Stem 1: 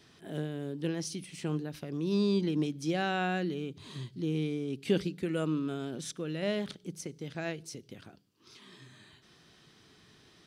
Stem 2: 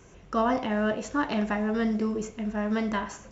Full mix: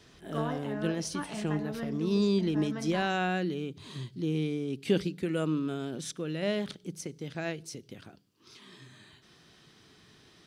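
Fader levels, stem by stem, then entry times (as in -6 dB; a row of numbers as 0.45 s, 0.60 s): +1.5 dB, -11.0 dB; 0.00 s, 0.00 s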